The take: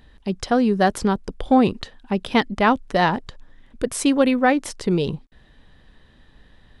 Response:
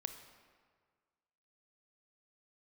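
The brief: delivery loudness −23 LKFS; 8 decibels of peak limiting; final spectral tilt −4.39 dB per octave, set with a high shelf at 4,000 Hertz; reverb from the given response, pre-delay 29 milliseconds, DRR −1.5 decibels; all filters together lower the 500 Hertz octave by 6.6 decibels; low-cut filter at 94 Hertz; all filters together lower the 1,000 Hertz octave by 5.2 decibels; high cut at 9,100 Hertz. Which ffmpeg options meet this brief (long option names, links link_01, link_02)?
-filter_complex "[0:a]highpass=94,lowpass=9100,equalizer=frequency=500:width_type=o:gain=-7,equalizer=frequency=1000:width_type=o:gain=-4.5,highshelf=frequency=4000:gain=7,alimiter=limit=-14.5dB:level=0:latency=1,asplit=2[link_01][link_02];[1:a]atrim=start_sample=2205,adelay=29[link_03];[link_02][link_03]afir=irnorm=-1:irlink=0,volume=3.5dB[link_04];[link_01][link_04]amix=inputs=2:normalize=0,volume=-1dB"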